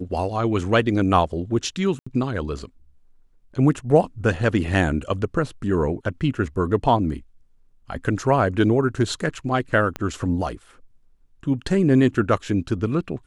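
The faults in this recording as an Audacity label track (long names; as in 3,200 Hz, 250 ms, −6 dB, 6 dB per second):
1.990000	2.060000	drop-out 75 ms
9.960000	9.960000	click −14 dBFS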